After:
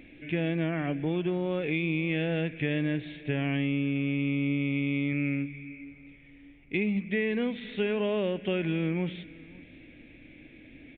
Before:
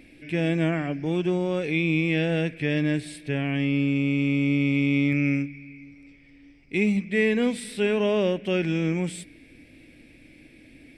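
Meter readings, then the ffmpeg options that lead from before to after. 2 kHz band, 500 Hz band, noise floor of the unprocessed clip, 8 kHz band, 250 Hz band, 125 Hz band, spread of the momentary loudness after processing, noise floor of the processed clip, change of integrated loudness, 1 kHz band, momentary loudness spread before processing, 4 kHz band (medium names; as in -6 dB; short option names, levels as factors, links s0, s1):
-5.0 dB, -5.0 dB, -53 dBFS, under -35 dB, -5.0 dB, -4.5 dB, 8 LU, -53 dBFS, -5.0 dB, -4.5 dB, 7 LU, -5.0 dB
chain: -af "acompressor=threshold=0.0562:ratio=6,aecho=1:1:549:0.075,aresample=8000,aresample=44100"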